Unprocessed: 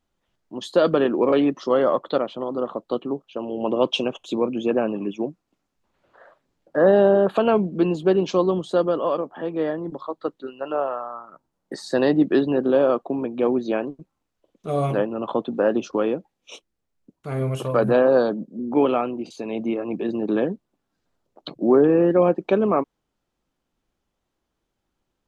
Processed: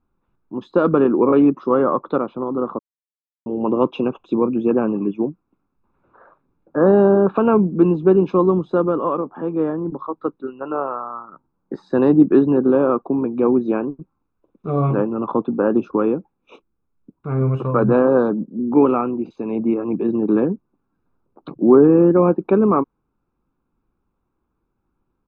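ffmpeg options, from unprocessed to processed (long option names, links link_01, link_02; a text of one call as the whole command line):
ffmpeg -i in.wav -filter_complex "[0:a]asplit=3[link_01][link_02][link_03];[link_01]atrim=end=2.79,asetpts=PTS-STARTPTS,afade=type=out:start_time=2.786:duration=0.004:curve=hsin[link_04];[link_02]atrim=start=2.79:end=3.46,asetpts=PTS-STARTPTS,volume=0[link_05];[link_03]atrim=start=3.46,asetpts=PTS-STARTPTS,afade=type=in:duration=0.004:curve=hsin[link_06];[link_04][link_05][link_06]concat=n=3:v=0:a=1,lowpass=1300,equalizer=frequency=500:width_type=o:width=1.9:gain=3,aecho=1:1:0.8:0.65,volume=2.5dB" out.wav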